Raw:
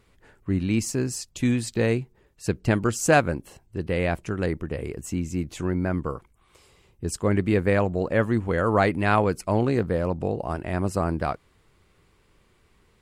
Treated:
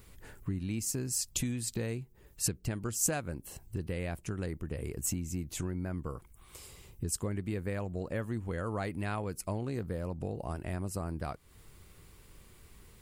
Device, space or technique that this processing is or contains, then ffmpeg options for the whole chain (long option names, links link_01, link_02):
ASMR close-microphone chain: -af "lowshelf=frequency=180:gain=8,acompressor=threshold=-35dB:ratio=4,aemphasis=mode=production:type=50kf,highshelf=frequency=9800:gain=4.5"